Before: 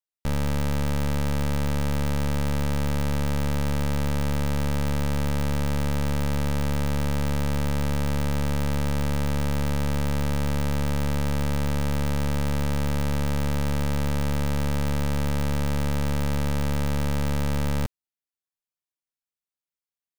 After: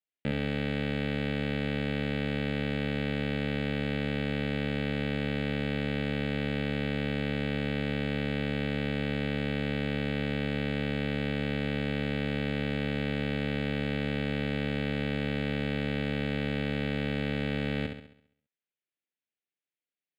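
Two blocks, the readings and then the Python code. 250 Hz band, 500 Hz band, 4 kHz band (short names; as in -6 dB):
-2.0 dB, -1.0 dB, -0.5 dB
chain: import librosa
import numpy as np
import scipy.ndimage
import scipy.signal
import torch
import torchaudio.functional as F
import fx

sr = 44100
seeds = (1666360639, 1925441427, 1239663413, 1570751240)

y = fx.bandpass_edges(x, sr, low_hz=190.0, high_hz=3300.0)
y = fx.fixed_phaser(y, sr, hz=2500.0, stages=4)
y = fx.room_flutter(y, sr, wall_m=11.5, rt60_s=0.63)
y = F.gain(torch.from_numpy(y), 3.5).numpy()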